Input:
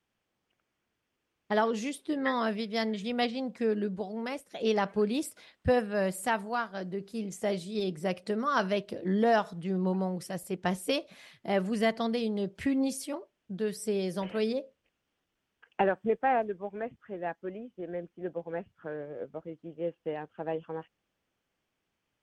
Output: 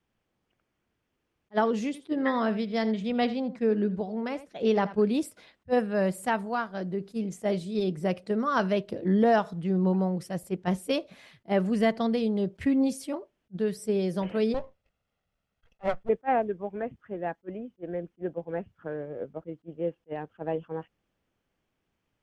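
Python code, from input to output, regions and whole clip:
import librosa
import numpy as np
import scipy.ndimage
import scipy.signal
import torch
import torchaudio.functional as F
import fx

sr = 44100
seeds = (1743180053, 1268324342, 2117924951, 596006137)

y = fx.chain(x, sr, fx.high_shelf(hz=9000.0, db=-10.5),
    fx.echo_single(ms=82, db=-15.5), at=(1.86, 4.98))
y = fx.chain(y, sr, fx.lower_of_two(delay_ms=1.5),
    fx.high_shelf(hz=5000.0, db=-5.5), at=(14.54, 16.09))
y = fx.tilt_eq(y, sr, slope=-1.5)
y = fx.attack_slew(y, sr, db_per_s=580.0)
y = F.gain(torch.from_numpy(y), 1.5).numpy()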